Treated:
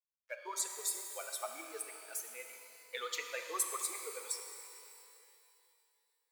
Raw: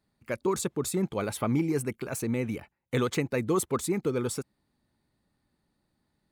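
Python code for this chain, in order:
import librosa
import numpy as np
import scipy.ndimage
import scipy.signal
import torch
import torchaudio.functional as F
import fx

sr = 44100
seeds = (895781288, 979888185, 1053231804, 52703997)

y = fx.bin_expand(x, sr, power=2.0)
y = fx.high_shelf(y, sr, hz=2200.0, db=11.0)
y = np.sign(y) * np.maximum(np.abs(y) - 10.0 ** (-53.5 / 20.0), 0.0)
y = scipy.signal.sosfilt(scipy.signal.cheby2(4, 50, 200.0, 'highpass', fs=sr, output='sos'), y)
y = fx.rev_shimmer(y, sr, seeds[0], rt60_s=2.7, semitones=12, shimmer_db=-8, drr_db=4.5)
y = F.gain(torch.from_numpy(y), -8.0).numpy()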